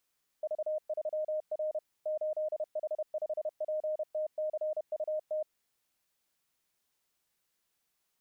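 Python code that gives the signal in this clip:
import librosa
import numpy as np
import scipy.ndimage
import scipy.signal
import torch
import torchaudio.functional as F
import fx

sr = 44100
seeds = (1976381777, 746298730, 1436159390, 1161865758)

y = fx.morse(sr, text='V3R 8H5PTCUT', wpm=31, hz=617.0, level_db=-30.0)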